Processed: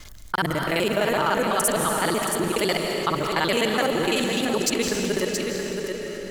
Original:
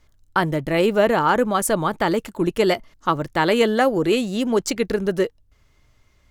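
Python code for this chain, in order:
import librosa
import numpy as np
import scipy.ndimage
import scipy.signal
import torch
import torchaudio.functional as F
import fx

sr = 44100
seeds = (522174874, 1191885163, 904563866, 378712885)

y = fx.local_reverse(x, sr, ms=42.0)
y = fx.high_shelf(y, sr, hz=2100.0, db=11.0)
y = y + 10.0 ** (-10.5 / 20.0) * np.pad(y, (int(674 * sr / 1000.0), 0))[:len(y)]
y = fx.rev_freeverb(y, sr, rt60_s=2.5, hf_ratio=0.95, predelay_ms=120, drr_db=5.5)
y = fx.env_flatten(y, sr, amount_pct=50)
y = y * 10.0 ** (-9.0 / 20.0)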